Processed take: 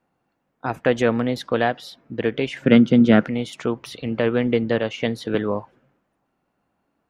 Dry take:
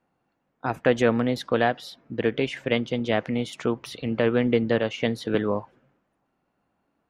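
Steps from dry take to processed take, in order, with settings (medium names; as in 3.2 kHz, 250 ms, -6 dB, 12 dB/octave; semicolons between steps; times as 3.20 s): 2.62–3.28 s: small resonant body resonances 200/1400 Hz, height 15 dB, ringing for 20 ms; trim +1.5 dB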